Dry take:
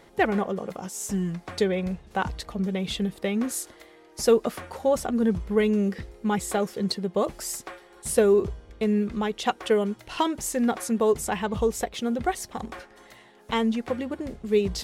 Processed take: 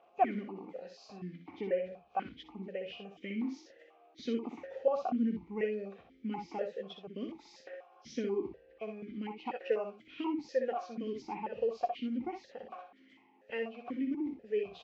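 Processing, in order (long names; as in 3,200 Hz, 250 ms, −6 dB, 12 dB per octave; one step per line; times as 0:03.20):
hearing-aid frequency compression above 2,100 Hz 1.5 to 1
ambience of single reflections 61 ms −6 dB, 79 ms −18 dB
formant filter that steps through the vowels 4.1 Hz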